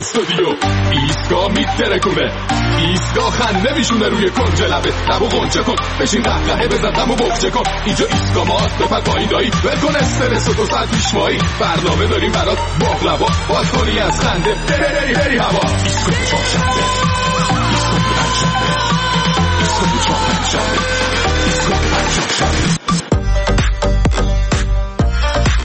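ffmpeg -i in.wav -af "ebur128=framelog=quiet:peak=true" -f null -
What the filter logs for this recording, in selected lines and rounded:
Integrated loudness:
  I:         -14.7 LUFS
  Threshold: -24.7 LUFS
Loudness range:
  LRA:         0.9 LU
  Threshold: -34.6 LUFS
  LRA low:   -15.0 LUFS
  LRA high:  -14.0 LUFS
True peak:
  Peak:       -2.7 dBFS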